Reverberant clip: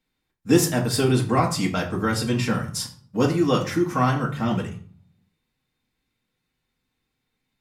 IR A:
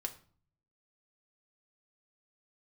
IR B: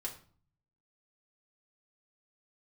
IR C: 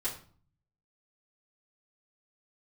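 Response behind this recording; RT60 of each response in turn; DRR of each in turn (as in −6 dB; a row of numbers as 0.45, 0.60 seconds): B; 0.45, 0.45, 0.45 seconds; 4.0, −2.0, −9.5 decibels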